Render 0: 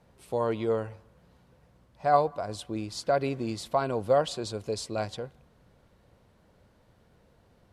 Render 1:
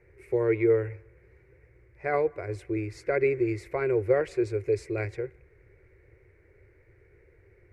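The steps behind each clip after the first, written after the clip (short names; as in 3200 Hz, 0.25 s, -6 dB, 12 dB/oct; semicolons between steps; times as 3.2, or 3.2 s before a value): EQ curve 110 Hz 0 dB, 230 Hz -26 dB, 370 Hz +8 dB, 670 Hz -15 dB, 1100 Hz -15 dB, 2200 Hz +9 dB, 3200 Hz -25 dB, 5600 Hz -17 dB; gain +5.5 dB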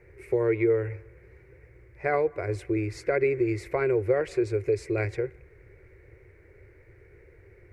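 compressor 2:1, threshold -29 dBFS, peak gain reduction 7 dB; gain +5 dB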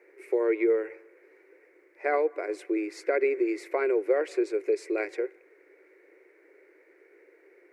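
elliptic high-pass 290 Hz, stop band 40 dB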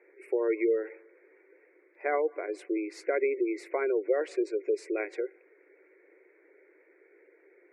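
spectral gate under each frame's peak -30 dB strong; gain -2.5 dB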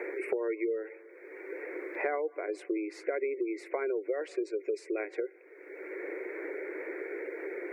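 three-band squash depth 100%; gain -3.5 dB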